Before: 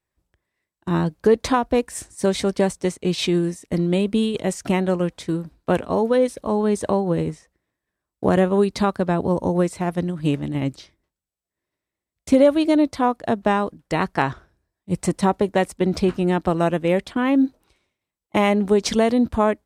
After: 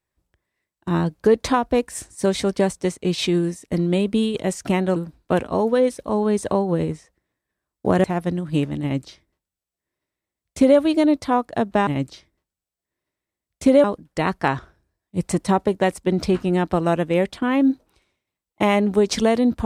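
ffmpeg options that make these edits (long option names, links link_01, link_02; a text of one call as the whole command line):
ffmpeg -i in.wav -filter_complex "[0:a]asplit=5[link_01][link_02][link_03][link_04][link_05];[link_01]atrim=end=4.962[link_06];[link_02]atrim=start=5.338:end=8.422[link_07];[link_03]atrim=start=9.748:end=13.582[link_08];[link_04]atrim=start=10.528:end=12.502[link_09];[link_05]atrim=start=13.578[link_10];[link_06][link_07]acrossfade=duration=0.004:curve1=hsin:curve2=hsin[link_11];[link_11][link_08]acrossfade=duration=0.004:curve1=hsin:curve2=hsin[link_12];[link_12][link_09]acrossfade=duration=0.004:curve1=hsin:curve2=hsin[link_13];[link_13][link_10]acrossfade=duration=0.004:curve1=hsin:curve2=hsin" out.wav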